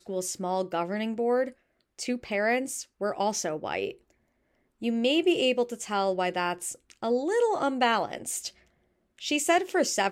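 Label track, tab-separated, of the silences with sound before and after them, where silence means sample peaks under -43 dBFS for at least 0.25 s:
1.510000	1.990000	silence
3.930000	4.820000	silence
8.500000	9.180000	silence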